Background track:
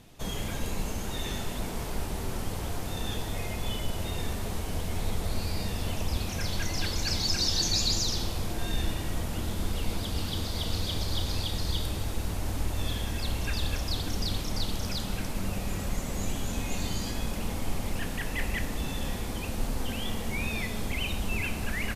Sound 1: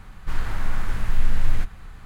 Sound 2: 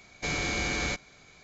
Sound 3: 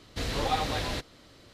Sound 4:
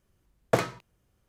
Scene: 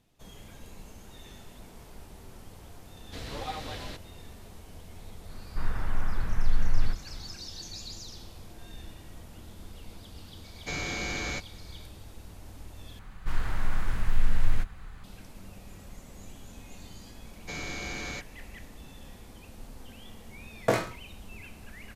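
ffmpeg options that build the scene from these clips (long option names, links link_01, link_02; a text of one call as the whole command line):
ffmpeg -i bed.wav -i cue0.wav -i cue1.wav -i cue2.wav -i cue3.wav -filter_complex "[1:a]asplit=2[link_01][link_02];[2:a]asplit=2[link_03][link_04];[0:a]volume=-15dB[link_05];[link_01]lowpass=1900[link_06];[4:a]aecho=1:1:20|43|69.45|99.87|134.8:0.631|0.398|0.251|0.158|0.1[link_07];[link_05]asplit=2[link_08][link_09];[link_08]atrim=end=12.994[link_10];[link_02]atrim=end=2.05,asetpts=PTS-STARTPTS,volume=-3.5dB[link_11];[link_09]atrim=start=15.036[link_12];[3:a]atrim=end=1.53,asetpts=PTS-STARTPTS,volume=-8.5dB,afade=type=in:duration=0.004:curve=hsin,afade=type=out:start_time=1.526:duration=0.004:curve=hsin,adelay=2960[link_13];[link_06]atrim=end=2.05,asetpts=PTS-STARTPTS,volume=-4dB,afade=type=in:duration=0.004:curve=hsin,afade=type=out:start_time=2.046:duration=0.004:curve=hsin,adelay=233289S[link_14];[link_03]atrim=end=1.43,asetpts=PTS-STARTPTS,volume=-3.5dB,afade=type=in:duration=0.004:curve=hsin,afade=type=out:start_time=1.426:duration=0.004:curve=hsin,adelay=10440[link_15];[link_04]atrim=end=1.43,asetpts=PTS-STARTPTS,volume=-7dB,afade=type=in:duration=0.004:curve=hsin,afade=type=out:start_time=1.426:duration=0.004:curve=hsin,adelay=17250[link_16];[link_07]atrim=end=1.28,asetpts=PTS-STARTPTS,volume=-2.5dB,afade=type=in:duration=0.004:curve=hsin,afade=type=out:start_time=1.276:duration=0.004:curve=hsin,adelay=20150[link_17];[link_10][link_11]acrossfade=duration=0.004:curve1=hsin:curve2=hsin[link_18];[link_18][link_12]acrossfade=duration=0.004:curve1=hsin:curve2=hsin[link_19];[link_19][link_13][link_14][link_15][link_16][link_17]amix=inputs=6:normalize=0" out.wav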